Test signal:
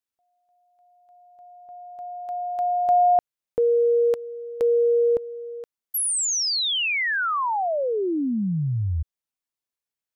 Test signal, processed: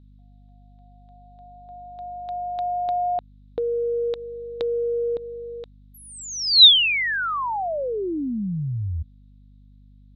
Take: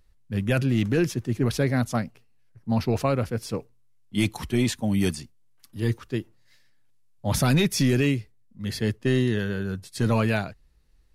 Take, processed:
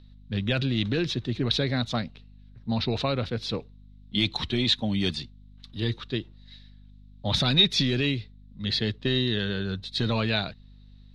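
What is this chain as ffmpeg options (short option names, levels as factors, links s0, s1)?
-af "acompressor=threshold=0.0631:ratio=4:attack=23:release=109:knee=6,lowpass=f=3800:t=q:w=9.5,aeval=exprs='val(0)+0.00355*(sin(2*PI*50*n/s)+sin(2*PI*2*50*n/s)/2+sin(2*PI*3*50*n/s)/3+sin(2*PI*4*50*n/s)/4+sin(2*PI*5*50*n/s)/5)':c=same"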